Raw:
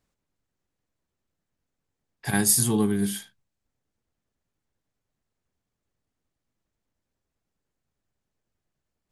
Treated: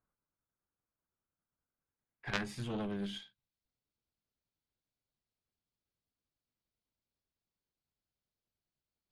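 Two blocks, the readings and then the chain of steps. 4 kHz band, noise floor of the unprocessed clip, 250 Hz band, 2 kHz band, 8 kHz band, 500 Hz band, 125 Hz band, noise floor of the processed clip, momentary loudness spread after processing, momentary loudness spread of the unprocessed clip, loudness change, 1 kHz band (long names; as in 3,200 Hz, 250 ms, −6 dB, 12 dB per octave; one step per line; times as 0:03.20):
−10.5 dB, −84 dBFS, −15.0 dB, −8.5 dB, −32.5 dB, −12.5 dB, −14.5 dB, below −85 dBFS, 11 LU, 15 LU, −17.0 dB, −10.0 dB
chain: low-pass filter sweep 1,400 Hz → 4,500 Hz, 0:01.61–0:03.64
notch filter 1,800 Hz, Q 10
harmonic generator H 3 −7 dB, 6 −27 dB, 7 −42 dB, 8 −25 dB, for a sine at −6 dBFS
level −3.5 dB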